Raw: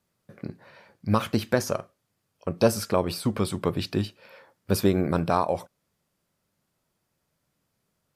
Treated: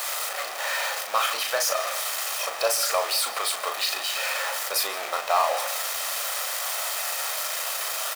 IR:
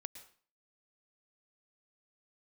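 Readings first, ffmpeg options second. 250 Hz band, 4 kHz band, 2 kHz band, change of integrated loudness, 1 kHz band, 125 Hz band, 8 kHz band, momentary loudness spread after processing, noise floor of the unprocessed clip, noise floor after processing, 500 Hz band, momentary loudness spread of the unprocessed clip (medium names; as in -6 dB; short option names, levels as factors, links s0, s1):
-28.0 dB, +12.0 dB, +11.0 dB, +1.0 dB, +5.0 dB, under -35 dB, +13.5 dB, 4 LU, -77 dBFS, -34 dBFS, -2.5 dB, 14 LU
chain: -filter_complex "[0:a]aeval=exprs='val(0)+0.5*0.0708*sgn(val(0))':c=same,highpass=f=690:w=0.5412,highpass=f=690:w=1.3066,aecho=1:1:1.6:0.33,aeval=exprs='0.316*(cos(1*acos(clip(val(0)/0.316,-1,1)))-cos(1*PI/2))+0.00631*(cos(5*acos(clip(val(0)/0.316,-1,1)))-cos(5*PI/2))':c=same,asplit=2[s0][s1];[1:a]atrim=start_sample=2205,adelay=37[s2];[s1][s2]afir=irnorm=-1:irlink=0,volume=0.891[s3];[s0][s3]amix=inputs=2:normalize=0"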